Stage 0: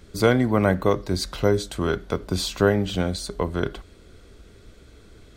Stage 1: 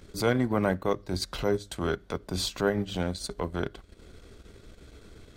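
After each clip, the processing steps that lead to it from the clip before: in parallel at +1.5 dB: compression, threshold -29 dBFS, peak gain reduction 16 dB; on the sum: hum notches 50/100 Hz; transient shaper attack -7 dB, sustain -11 dB; trim -6 dB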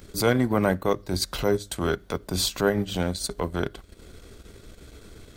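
treble shelf 9.7 kHz +11.5 dB; trim +3.5 dB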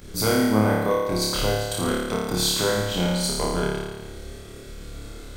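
compression 2:1, threshold -27 dBFS, peak gain reduction 7 dB; on a send: flutter echo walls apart 4.8 m, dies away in 1.3 s; on the sum: trim +1.5 dB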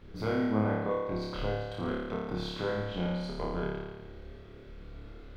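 added noise white -51 dBFS; distance through air 330 m; trim -8 dB

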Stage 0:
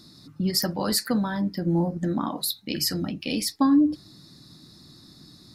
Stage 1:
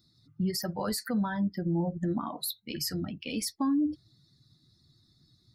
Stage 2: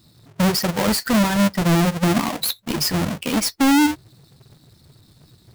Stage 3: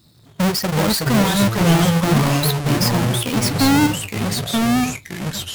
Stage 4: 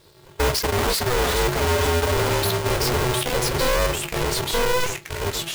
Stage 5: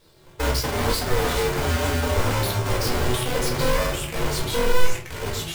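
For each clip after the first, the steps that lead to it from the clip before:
expander on every frequency bin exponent 1.5; peak limiter -22 dBFS, peak gain reduction 10.5 dB; dynamic bell 2.8 kHz, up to -3 dB, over -47 dBFS, Q 0.93
square wave that keeps the level; trim +8.5 dB
ever faster or slower copies 248 ms, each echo -3 st, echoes 3
in parallel at -3 dB: compression, threshold -23 dBFS, peak gain reduction 12 dB; on the sum: hard clipper -13.5 dBFS, distortion -12 dB; polarity switched at an audio rate 250 Hz; trim -4.5 dB
simulated room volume 260 m³, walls furnished, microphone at 2 m; trim -6 dB

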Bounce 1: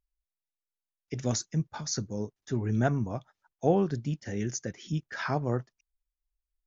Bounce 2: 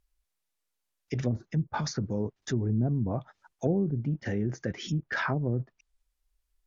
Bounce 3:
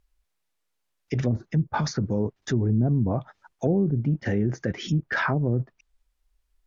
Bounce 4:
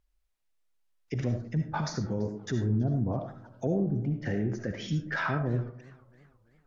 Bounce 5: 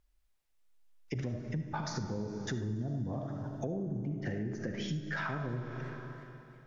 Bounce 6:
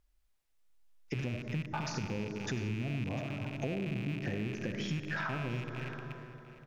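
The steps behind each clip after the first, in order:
low-pass that closes with the level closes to 330 Hz, closed at -24.5 dBFS; in parallel at -1.5 dB: compressor with a negative ratio -39 dBFS, ratio -1
treble shelf 4.6 kHz -6.5 dB; in parallel at 0 dB: peak limiter -22 dBFS, peak gain reduction 8 dB
algorithmic reverb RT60 0.43 s, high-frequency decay 0.6×, pre-delay 30 ms, DRR 5.5 dB; modulated delay 332 ms, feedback 45%, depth 153 cents, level -23 dB; trim -6 dB
Schroeder reverb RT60 2.8 s, combs from 31 ms, DRR 8 dB; compression 5:1, threshold -35 dBFS, peak gain reduction 11.5 dB; trim +1.5 dB
rattle on loud lows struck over -41 dBFS, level -34 dBFS; delay 701 ms -16.5 dB

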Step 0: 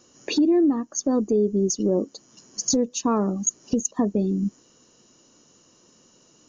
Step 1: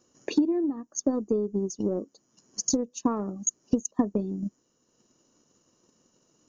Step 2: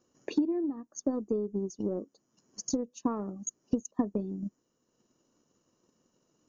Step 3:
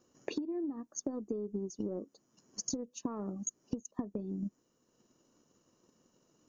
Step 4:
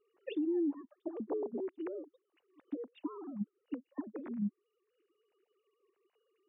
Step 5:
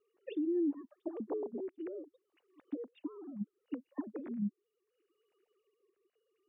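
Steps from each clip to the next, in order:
peaking EQ 3.4 kHz -5 dB 1.8 oct; transient shaper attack +9 dB, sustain -4 dB; trim -8.5 dB
treble shelf 4.5 kHz -7.5 dB; trim -4.5 dB
compression 12:1, threshold -35 dBFS, peak gain reduction 14 dB; trim +2 dB
formants replaced by sine waves; peak limiter -30.5 dBFS, peak gain reduction 8.5 dB; trim +3 dB
rotary cabinet horn 0.7 Hz; trim +1 dB

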